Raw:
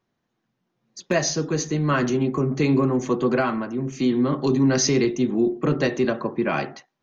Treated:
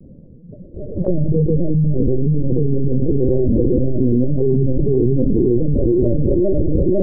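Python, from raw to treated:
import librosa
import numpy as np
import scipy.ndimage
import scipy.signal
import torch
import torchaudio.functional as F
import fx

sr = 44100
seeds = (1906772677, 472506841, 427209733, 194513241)

p1 = fx.spec_delay(x, sr, highs='early', ms=578)
p2 = fx.peak_eq(p1, sr, hz=92.0, db=14.0, octaves=0.88)
p3 = fx.quant_dither(p2, sr, seeds[0], bits=6, dither='none')
p4 = p2 + F.gain(torch.from_numpy(p3), -6.5).numpy()
p5 = scipy.signal.sosfilt(scipy.signal.cheby1(6, 9, 620.0, 'lowpass', fs=sr, output='sos'), p4)
p6 = fx.doubler(p5, sr, ms=34.0, db=-13.0)
p7 = fx.echo_feedback(p6, sr, ms=503, feedback_pct=37, wet_db=-4.0)
p8 = fx.lpc_vocoder(p7, sr, seeds[1], excitation='pitch_kept', order=8)
p9 = fx.env_flatten(p8, sr, amount_pct=100)
y = F.gain(torch.from_numpy(p9), -2.0).numpy()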